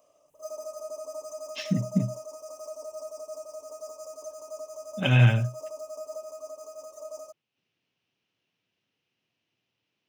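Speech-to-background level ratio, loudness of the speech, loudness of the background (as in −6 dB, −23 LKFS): 15.5 dB, −25.0 LKFS, −40.5 LKFS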